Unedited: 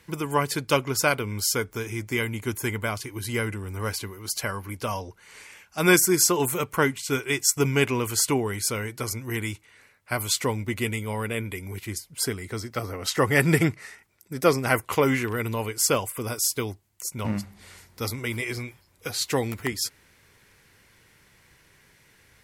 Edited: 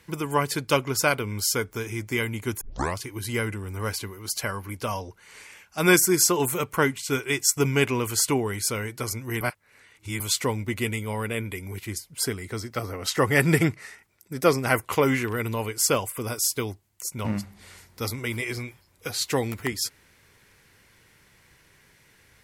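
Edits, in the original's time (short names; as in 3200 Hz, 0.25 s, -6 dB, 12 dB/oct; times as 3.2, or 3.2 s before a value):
2.61 tape start 0.36 s
9.41–10.2 reverse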